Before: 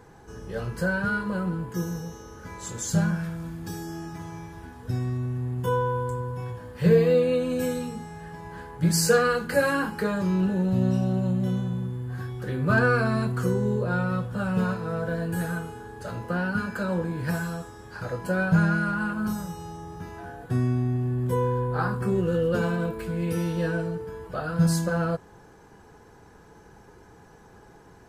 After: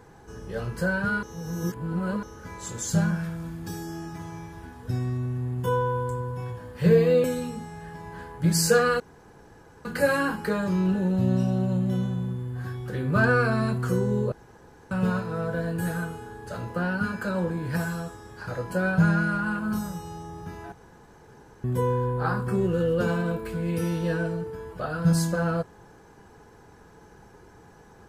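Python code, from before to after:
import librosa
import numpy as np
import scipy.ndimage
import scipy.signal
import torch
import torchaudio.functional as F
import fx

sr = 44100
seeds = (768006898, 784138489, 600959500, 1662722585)

y = fx.edit(x, sr, fx.reverse_span(start_s=1.23, length_s=1.0),
    fx.cut(start_s=7.24, length_s=0.39),
    fx.insert_room_tone(at_s=9.39, length_s=0.85),
    fx.room_tone_fill(start_s=13.86, length_s=0.59),
    fx.room_tone_fill(start_s=20.26, length_s=0.92), tone=tone)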